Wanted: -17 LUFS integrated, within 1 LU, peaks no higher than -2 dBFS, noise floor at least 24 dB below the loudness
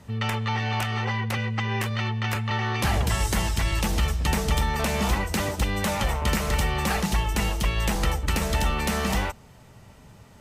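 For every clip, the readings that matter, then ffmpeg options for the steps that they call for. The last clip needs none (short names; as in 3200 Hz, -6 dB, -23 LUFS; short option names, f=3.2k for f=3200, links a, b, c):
loudness -25.5 LUFS; peak -12.0 dBFS; loudness target -17.0 LUFS
-> -af "volume=8.5dB"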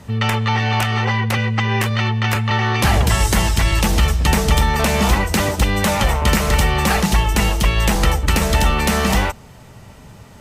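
loudness -17.0 LUFS; peak -3.5 dBFS; noise floor -42 dBFS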